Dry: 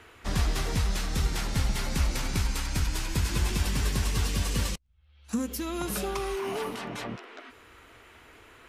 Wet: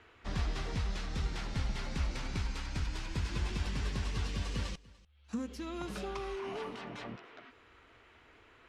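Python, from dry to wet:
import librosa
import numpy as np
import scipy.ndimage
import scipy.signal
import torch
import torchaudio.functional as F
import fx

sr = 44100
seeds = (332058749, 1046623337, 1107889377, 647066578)

y = scipy.signal.sosfilt(scipy.signal.butter(2, 4900.0, 'lowpass', fs=sr, output='sos'), x)
y = y + 10.0 ** (-22.5 / 20.0) * np.pad(y, (int(293 * sr / 1000.0), 0))[:len(y)]
y = F.gain(torch.from_numpy(y), -7.5).numpy()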